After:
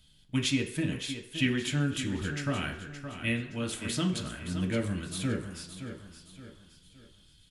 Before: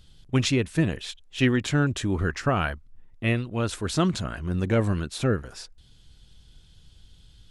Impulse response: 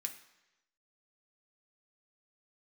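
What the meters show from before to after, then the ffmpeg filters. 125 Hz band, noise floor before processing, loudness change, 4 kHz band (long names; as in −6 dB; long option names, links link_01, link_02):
−7.5 dB, −54 dBFS, −6.0 dB, −2.0 dB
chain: -filter_complex "[0:a]aecho=1:1:569|1138|1707|2276:0.299|0.119|0.0478|0.0191[link_01];[1:a]atrim=start_sample=2205,asetrate=57330,aresample=44100[link_02];[link_01][link_02]afir=irnorm=-1:irlink=0,acrossover=split=720|1200[link_03][link_04][link_05];[link_04]acompressor=threshold=-57dB:ratio=6[link_06];[link_03][link_06][link_05]amix=inputs=3:normalize=0,volume=1dB"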